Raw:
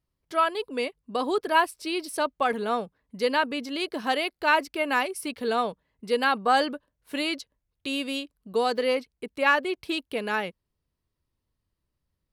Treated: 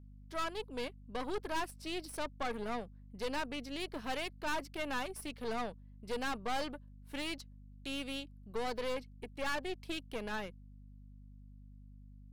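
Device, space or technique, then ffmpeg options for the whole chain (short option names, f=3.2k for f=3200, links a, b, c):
valve amplifier with mains hum: -af "aeval=exprs='(tanh(22.4*val(0)+0.8)-tanh(0.8))/22.4':c=same,aeval=exprs='val(0)+0.00447*(sin(2*PI*50*n/s)+sin(2*PI*2*50*n/s)/2+sin(2*PI*3*50*n/s)/3+sin(2*PI*4*50*n/s)/4+sin(2*PI*5*50*n/s)/5)':c=same,volume=-6dB"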